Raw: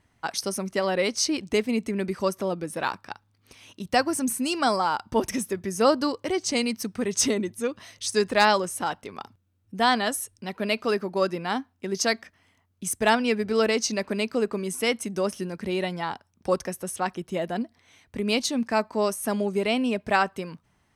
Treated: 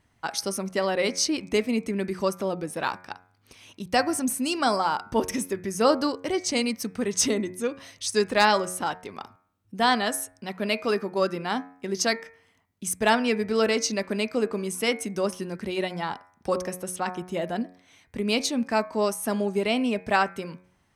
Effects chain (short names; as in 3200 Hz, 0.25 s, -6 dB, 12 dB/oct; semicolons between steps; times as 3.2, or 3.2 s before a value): de-hum 91.12 Hz, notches 28